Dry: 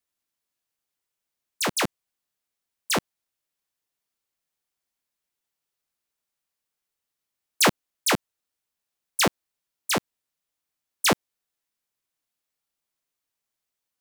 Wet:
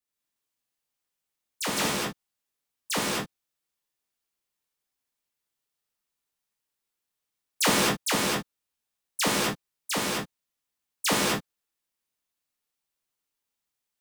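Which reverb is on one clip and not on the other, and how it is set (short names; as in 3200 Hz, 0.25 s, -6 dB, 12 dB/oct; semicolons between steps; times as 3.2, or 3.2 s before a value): non-linear reverb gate 0.28 s flat, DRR -5.5 dB; gain -7 dB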